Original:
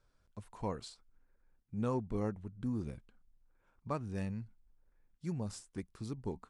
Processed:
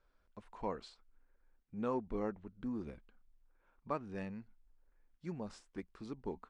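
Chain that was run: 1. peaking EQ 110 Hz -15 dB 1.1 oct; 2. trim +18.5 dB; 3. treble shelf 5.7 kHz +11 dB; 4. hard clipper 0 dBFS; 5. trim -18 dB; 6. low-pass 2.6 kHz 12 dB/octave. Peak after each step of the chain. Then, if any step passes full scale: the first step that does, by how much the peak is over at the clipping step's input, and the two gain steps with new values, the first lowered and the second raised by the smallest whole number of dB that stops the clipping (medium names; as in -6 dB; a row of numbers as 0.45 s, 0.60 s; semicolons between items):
-24.5 dBFS, -6.0 dBFS, -5.5 dBFS, -5.5 dBFS, -23.5 dBFS, -23.5 dBFS; nothing clips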